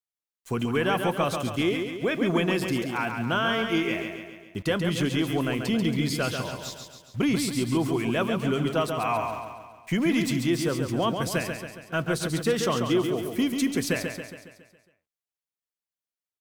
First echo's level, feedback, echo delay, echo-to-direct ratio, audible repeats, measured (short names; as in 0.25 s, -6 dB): -6.0 dB, 53%, 0.138 s, -4.5 dB, 6